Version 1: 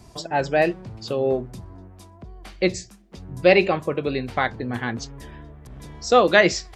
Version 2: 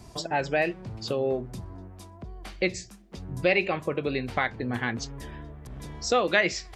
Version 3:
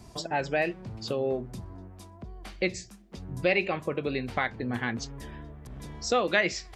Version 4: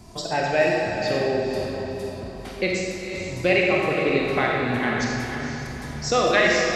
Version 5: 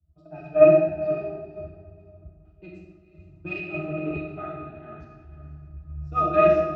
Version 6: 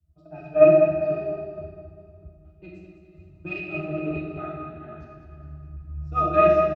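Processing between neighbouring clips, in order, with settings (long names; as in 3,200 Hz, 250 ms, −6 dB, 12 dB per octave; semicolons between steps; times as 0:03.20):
dynamic equaliser 2,300 Hz, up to +7 dB, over −38 dBFS, Q 1.6; downward compressor 2 to 1, threshold −27 dBFS, peak gain reduction 11 dB
parametric band 220 Hz +2.5 dB 0.33 octaves; level −2 dB
feedback delay with all-pass diffusion 485 ms, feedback 42%, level −7 dB; convolution reverb RT60 1.8 s, pre-delay 5 ms, DRR −2 dB; level +3 dB
harmonic generator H 2 −10 dB, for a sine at −6.5 dBFS; resonances in every octave D#, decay 0.16 s; multiband upward and downward expander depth 100%; level +3 dB
repeating echo 202 ms, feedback 38%, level −9 dB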